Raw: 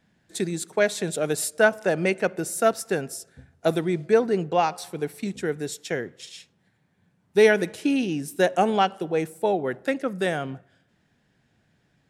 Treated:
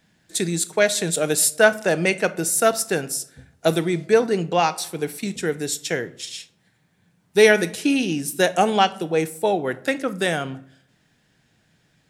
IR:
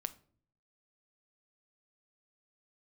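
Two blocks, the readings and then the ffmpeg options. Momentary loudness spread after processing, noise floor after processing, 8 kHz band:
11 LU, -64 dBFS, +10.0 dB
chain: -filter_complex "[0:a]asplit=2[a][b];[1:a]atrim=start_sample=2205,highshelf=f=2.3k:g=10[c];[b][c]afir=irnorm=-1:irlink=0,volume=11dB[d];[a][d]amix=inputs=2:normalize=0,volume=-10dB"

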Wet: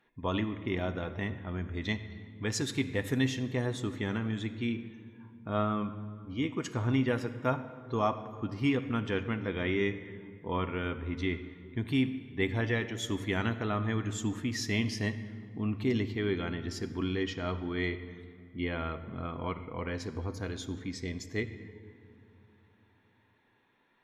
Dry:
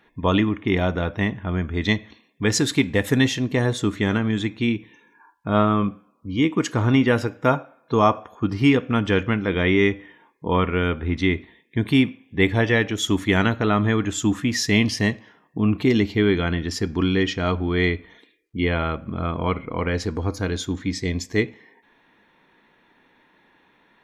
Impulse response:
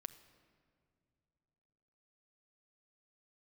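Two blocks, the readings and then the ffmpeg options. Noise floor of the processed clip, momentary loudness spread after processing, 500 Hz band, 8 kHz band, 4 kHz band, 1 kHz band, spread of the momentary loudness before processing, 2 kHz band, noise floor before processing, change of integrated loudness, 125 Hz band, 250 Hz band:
-67 dBFS, 9 LU, -11.5 dB, -12.0 dB, -12.0 dB, -11.5 dB, 8 LU, -11.5 dB, -61 dBFS, -11.5 dB, -10.5 dB, -11.5 dB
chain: -filter_complex "[1:a]atrim=start_sample=2205,asetrate=34398,aresample=44100[a];[0:a][a]afir=irnorm=-1:irlink=0,volume=-8.5dB"

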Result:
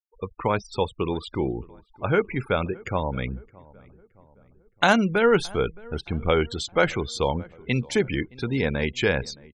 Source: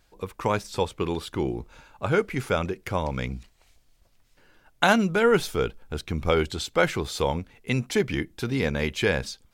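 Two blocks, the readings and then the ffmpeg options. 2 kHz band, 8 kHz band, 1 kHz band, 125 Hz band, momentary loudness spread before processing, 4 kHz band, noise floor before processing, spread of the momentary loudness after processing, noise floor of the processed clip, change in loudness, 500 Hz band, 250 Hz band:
+1.0 dB, -2.0 dB, +1.0 dB, +1.0 dB, 11 LU, +0.5 dB, -62 dBFS, 11 LU, -61 dBFS, +1.0 dB, +1.0 dB, +1.0 dB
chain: -filter_complex "[0:a]afftfilt=real='re*gte(hypot(re,im),0.0178)':imag='im*gte(hypot(re,im),0.0178)':win_size=1024:overlap=0.75,asplit=2[a][b];[b]adelay=618,lowpass=f=1.5k:p=1,volume=-23dB,asplit=2[c][d];[d]adelay=618,lowpass=f=1.5k:p=1,volume=0.53,asplit=2[e][f];[f]adelay=618,lowpass=f=1.5k:p=1,volume=0.53,asplit=2[g][h];[h]adelay=618,lowpass=f=1.5k:p=1,volume=0.53[i];[a][c][e][g][i]amix=inputs=5:normalize=0,volume=1dB"

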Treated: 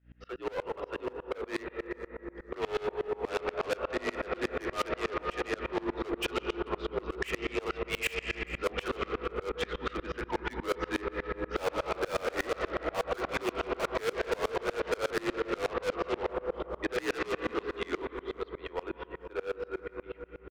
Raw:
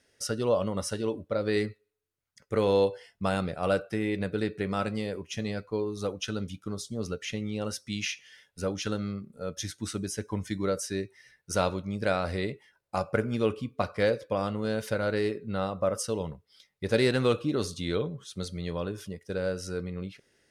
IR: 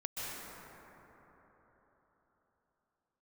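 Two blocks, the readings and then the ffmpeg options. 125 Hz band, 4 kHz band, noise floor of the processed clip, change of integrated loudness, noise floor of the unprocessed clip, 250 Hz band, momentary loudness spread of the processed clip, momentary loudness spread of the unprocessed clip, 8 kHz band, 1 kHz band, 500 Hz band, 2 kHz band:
-13.0 dB, -3.0 dB, -54 dBFS, -3.5 dB, -76 dBFS, -6.5 dB, 7 LU, 9 LU, -10.0 dB, 0.0 dB, -3.5 dB, +1.5 dB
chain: -filter_complex "[0:a]highpass=f=490:t=q:w=0.5412,highpass=f=490:t=q:w=1.307,lowpass=f=3k:t=q:w=0.5176,lowpass=f=3k:t=q:w=0.7071,lowpass=f=3k:t=q:w=1.932,afreqshift=-71,aeval=exprs='val(0)+0.002*(sin(2*PI*60*n/s)+sin(2*PI*2*60*n/s)/2+sin(2*PI*3*60*n/s)/3+sin(2*PI*4*60*n/s)/4+sin(2*PI*5*60*n/s)/5)':c=same,asplit=2[a][b];[1:a]atrim=start_sample=2205[c];[b][c]afir=irnorm=-1:irlink=0,volume=-7.5dB[d];[a][d]amix=inputs=2:normalize=0,asoftclip=type=hard:threshold=-30.5dB,dynaudnorm=f=280:g=31:m=12.5dB,aecho=1:1:437|874:0.0891|0.0285,aeval=exprs='0.141*(cos(1*acos(clip(val(0)/0.141,-1,1)))-cos(1*PI/2))+0.0282*(cos(5*acos(clip(val(0)/0.141,-1,1)))-cos(5*PI/2))':c=same,acompressor=threshold=-23dB:ratio=6,aeval=exprs='val(0)*pow(10,-28*if(lt(mod(-8.3*n/s,1),2*abs(-8.3)/1000),1-mod(-8.3*n/s,1)/(2*abs(-8.3)/1000),(mod(-8.3*n/s,1)-2*abs(-8.3)/1000)/(1-2*abs(-8.3)/1000))/20)':c=same"

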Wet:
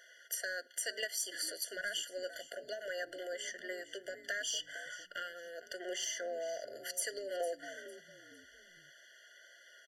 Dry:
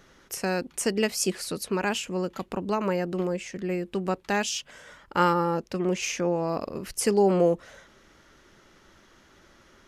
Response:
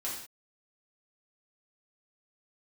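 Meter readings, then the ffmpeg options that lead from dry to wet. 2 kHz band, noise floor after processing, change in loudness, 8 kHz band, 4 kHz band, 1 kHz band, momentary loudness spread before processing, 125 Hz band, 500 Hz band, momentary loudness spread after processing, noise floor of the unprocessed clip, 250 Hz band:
-6.0 dB, -61 dBFS, -12.5 dB, -6.0 dB, -5.0 dB, -20.5 dB, 10 LU, under -35 dB, -15.0 dB, 21 LU, -58 dBFS, -27.5 dB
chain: -filter_complex "[0:a]highpass=f=730:w=0.5412,highpass=f=730:w=1.3066,acompressor=threshold=-33dB:ratio=6,asplit=4[a][b][c][d];[b]adelay=454,afreqshift=-120,volume=-16dB[e];[c]adelay=908,afreqshift=-240,volume=-26.2dB[f];[d]adelay=1362,afreqshift=-360,volume=-36.3dB[g];[a][e][f][g]amix=inputs=4:normalize=0,flanger=delay=1.9:depth=1.8:regen=88:speed=0.21:shape=triangular,asoftclip=type=tanh:threshold=-29dB,asplit=2[h][i];[1:a]atrim=start_sample=2205,lowpass=7.3k[j];[i][j]afir=irnorm=-1:irlink=0,volume=-23.5dB[k];[h][k]amix=inputs=2:normalize=0,afftfilt=real='re*eq(mod(floor(b*sr/1024/700),2),0)':imag='im*eq(mod(floor(b*sr/1024/700),2),0)':win_size=1024:overlap=0.75,volume=7dB"

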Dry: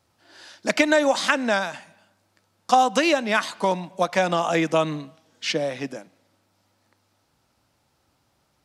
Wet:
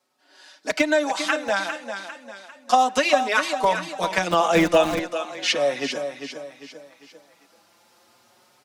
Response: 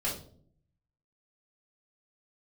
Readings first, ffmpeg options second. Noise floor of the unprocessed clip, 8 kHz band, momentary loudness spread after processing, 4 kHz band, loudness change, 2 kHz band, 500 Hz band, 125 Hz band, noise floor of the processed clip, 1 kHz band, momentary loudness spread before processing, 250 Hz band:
-69 dBFS, +1.5 dB, 17 LU, +1.5 dB, +0.5 dB, +0.5 dB, +1.0 dB, -2.5 dB, -60 dBFS, +1.0 dB, 13 LU, -1.0 dB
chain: -filter_complex "[0:a]asubboost=boost=4:cutoff=110,aecho=1:1:399|798|1197|1596:0.355|0.138|0.054|0.021,acrossover=split=210|3300[a][b][c];[a]acrusher=bits=4:mix=0:aa=0.000001[d];[d][b][c]amix=inputs=3:normalize=0,dynaudnorm=f=350:g=11:m=16.5dB,asplit=2[e][f];[f]adelay=5,afreqshift=0.34[g];[e][g]amix=inputs=2:normalize=1"

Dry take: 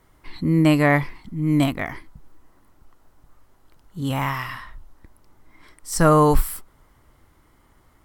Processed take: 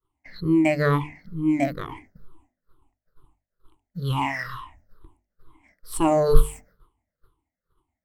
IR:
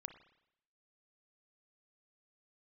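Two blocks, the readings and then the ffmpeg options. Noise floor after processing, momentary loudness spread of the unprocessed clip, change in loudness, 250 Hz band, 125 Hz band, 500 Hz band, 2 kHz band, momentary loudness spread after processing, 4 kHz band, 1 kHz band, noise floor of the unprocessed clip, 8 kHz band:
under -85 dBFS, 16 LU, -3.0 dB, -3.0 dB, -5.5 dB, -1.5 dB, -4.5 dB, 16 LU, -5.0 dB, -4.5 dB, -58 dBFS, -6.5 dB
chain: -filter_complex "[0:a]afftfilt=real='re*pow(10,24/40*sin(2*PI*(0.62*log(max(b,1)*sr/1024/100)/log(2)-(-2.2)*(pts-256)/sr)))':imag='im*pow(10,24/40*sin(2*PI*(0.62*log(max(b,1)*sr/1024/100)/log(2)-(-2.2)*(pts-256)/sr)))':win_size=1024:overlap=0.75,agate=range=-33dB:threshold=-38dB:ratio=3:detection=peak,asplit=2[a][b];[b]adynamicsmooth=sensitivity=6:basefreq=3.2k,volume=-1dB[c];[a][c]amix=inputs=2:normalize=0,bandreject=f=50:t=h:w=6,bandreject=f=100:t=h:w=6,bandreject=f=150:t=h:w=6,bandreject=f=200:t=h:w=6,bandreject=f=250:t=h:w=6,bandreject=f=300:t=h:w=6,bandreject=f=350:t=h:w=6,bandreject=f=400:t=h:w=6,bandreject=f=450:t=h:w=6,volume=-12.5dB"

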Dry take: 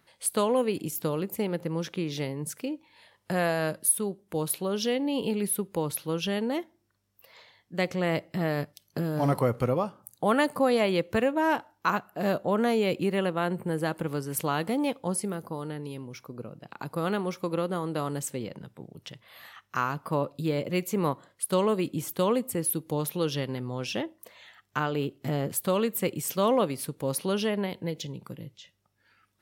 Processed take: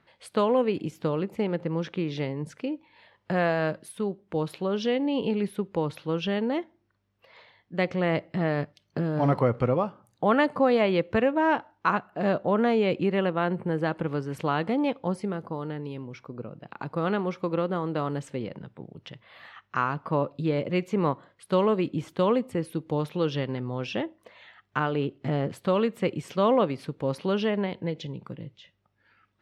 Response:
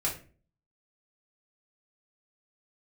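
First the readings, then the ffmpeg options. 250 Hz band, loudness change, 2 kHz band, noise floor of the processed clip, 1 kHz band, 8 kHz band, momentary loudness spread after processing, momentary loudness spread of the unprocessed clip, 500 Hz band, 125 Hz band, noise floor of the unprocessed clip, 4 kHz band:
+2.0 dB, +1.5 dB, +1.5 dB, -71 dBFS, +2.0 dB, under -15 dB, 12 LU, 13 LU, +2.0 dB, +2.0 dB, -71 dBFS, -2.0 dB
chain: -af "lowpass=3.1k,volume=2dB"

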